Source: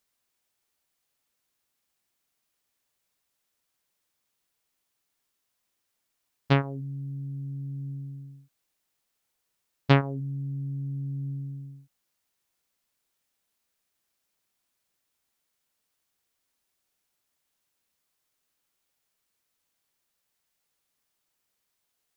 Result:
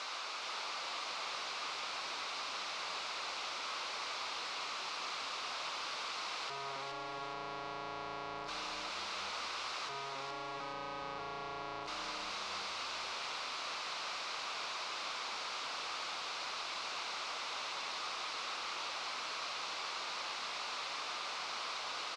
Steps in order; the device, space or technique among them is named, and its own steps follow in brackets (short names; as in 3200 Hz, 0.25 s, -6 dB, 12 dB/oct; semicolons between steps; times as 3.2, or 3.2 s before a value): 10.6–11.19 HPF 250 Hz 12 dB/oct; home computer beeper (infinite clipping; speaker cabinet 700–4500 Hz, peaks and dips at 1200 Hz +6 dB, 1800 Hz -9 dB, 3200 Hz -5 dB); frequency-shifting echo 0.418 s, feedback 47%, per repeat -110 Hz, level -5.5 dB; gain +4 dB